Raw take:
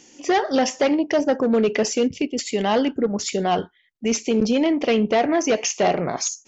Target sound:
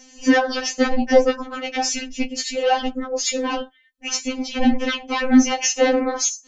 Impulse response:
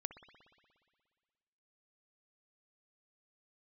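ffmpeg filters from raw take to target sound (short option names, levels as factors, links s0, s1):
-af "afreqshift=-84,tremolo=f=220:d=0.75,afftfilt=real='re*3.46*eq(mod(b,12),0)':imag='im*3.46*eq(mod(b,12),0)':win_size=2048:overlap=0.75,volume=2.82"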